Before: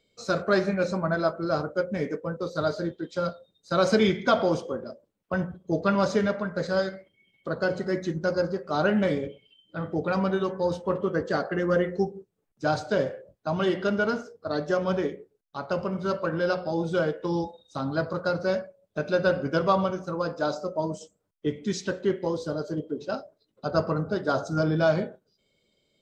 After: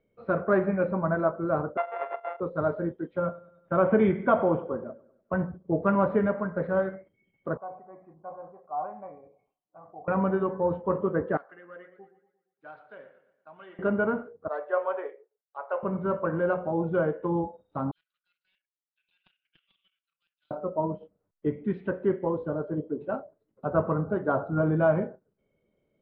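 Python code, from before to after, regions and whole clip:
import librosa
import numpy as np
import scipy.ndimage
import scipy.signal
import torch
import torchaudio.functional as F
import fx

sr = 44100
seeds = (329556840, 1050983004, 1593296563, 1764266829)

y = fx.chain(x, sr, fx.sample_sort(block=64),
    fx.steep_highpass(hz=490.0, slope=36),
    fx.air_absorb(metres=140.0), at=(1.77, 2.4))
y = fx.chain(y, sr, fx.brickwall_lowpass(high_hz=3700.0),
    fx.echo_feedback(ms=99, feedback_pct=54, wet_db=-21.5), at=(3.18, 5.36))
y = fx.chain(y, sr, fx.formant_cascade(vowel='a'),
    fx.peak_eq(hz=2100.0, db=11.0, octaves=0.9),
    fx.sustainer(db_per_s=110.0), at=(7.57, 10.08))
y = fx.chain(y, sr, fx.differentiator(),
    fx.echo_warbled(ms=116, feedback_pct=46, rate_hz=2.8, cents=74, wet_db=-13.5), at=(11.37, 13.79))
y = fx.chain(y, sr, fx.cheby2_highpass(hz=240.0, order=4, stop_db=40),
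    fx.band_widen(depth_pct=40), at=(14.48, 15.83))
y = fx.chain(y, sr, fx.ellip_highpass(hz=3000.0, order=4, stop_db=70),
    fx.level_steps(step_db=10),
    fx.doppler_dist(depth_ms=0.11), at=(17.91, 20.51))
y = scipy.signal.sosfilt(scipy.signal.bessel(8, 1400.0, 'lowpass', norm='mag', fs=sr, output='sos'), y)
y = fx.dynamic_eq(y, sr, hz=1000.0, q=3.2, threshold_db=-47.0, ratio=4.0, max_db=4)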